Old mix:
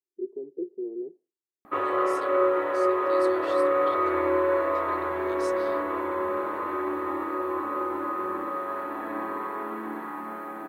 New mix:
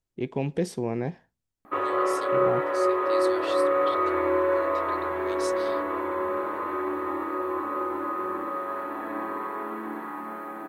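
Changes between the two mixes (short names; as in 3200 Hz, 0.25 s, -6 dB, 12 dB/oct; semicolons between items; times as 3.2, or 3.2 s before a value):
first voice: remove Butterworth band-pass 370 Hz, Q 4.3; second voice +7.0 dB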